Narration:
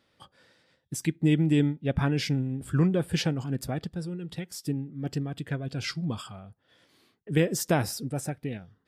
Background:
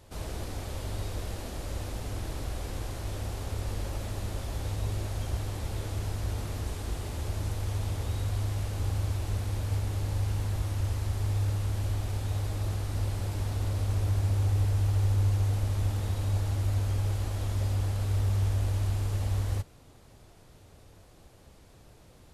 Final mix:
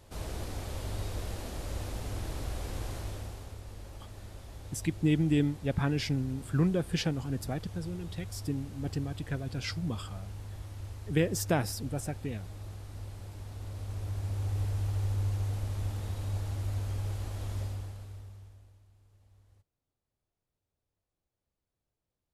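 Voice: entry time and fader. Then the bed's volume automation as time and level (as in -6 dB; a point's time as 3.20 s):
3.80 s, -3.5 dB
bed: 2.97 s -1.5 dB
3.62 s -12 dB
13.45 s -12 dB
14.63 s -5.5 dB
17.59 s -5.5 dB
18.87 s -33.5 dB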